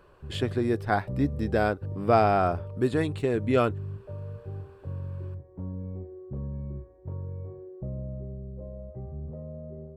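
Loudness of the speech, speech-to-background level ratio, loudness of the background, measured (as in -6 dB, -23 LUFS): -26.5 LUFS, 11.5 dB, -38.0 LUFS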